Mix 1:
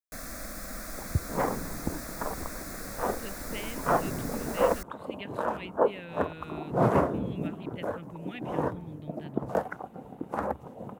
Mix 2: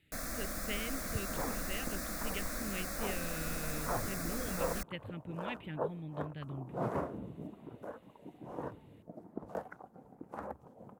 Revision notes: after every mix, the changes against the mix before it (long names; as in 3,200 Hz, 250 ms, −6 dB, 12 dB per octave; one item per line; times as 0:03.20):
speech: entry −2.85 s
second sound −12.0 dB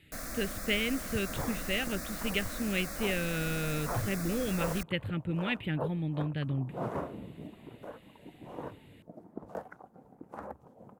speech +10.5 dB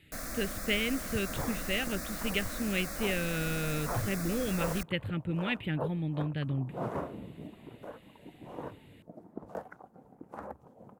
reverb: on, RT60 0.75 s